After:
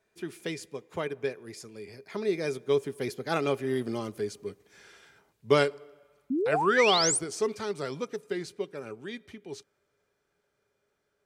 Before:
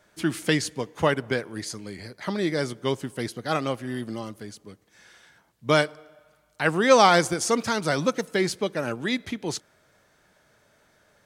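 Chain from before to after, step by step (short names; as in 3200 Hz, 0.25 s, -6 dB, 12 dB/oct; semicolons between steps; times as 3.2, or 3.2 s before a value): Doppler pass-by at 4.31, 20 m/s, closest 17 m; small resonant body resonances 410/2400 Hz, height 14 dB, ringing for 85 ms; painted sound rise, 6.3–7.19, 240–10000 Hz -27 dBFS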